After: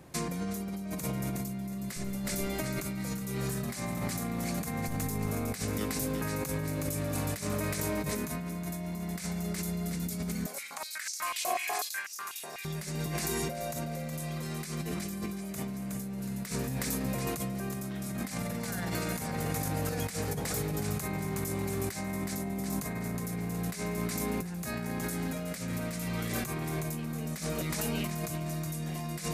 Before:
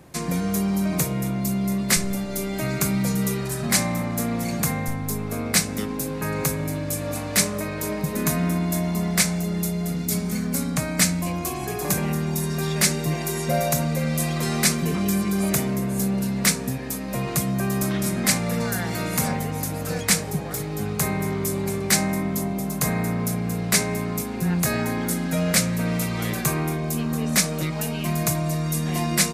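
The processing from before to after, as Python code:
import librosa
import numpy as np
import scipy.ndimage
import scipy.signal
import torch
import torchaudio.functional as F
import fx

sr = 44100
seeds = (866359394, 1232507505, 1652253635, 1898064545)

y = fx.echo_feedback(x, sr, ms=367, feedback_pct=42, wet_db=-8.5)
y = fx.over_compress(y, sr, threshold_db=-27.0, ratio=-1.0)
y = fx.filter_held_highpass(y, sr, hz=8.1, low_hz=640.0, high_hz=5600.0, at=(10.46, 12.65))
y = y * librosa.db_to_amplitude(-7.5)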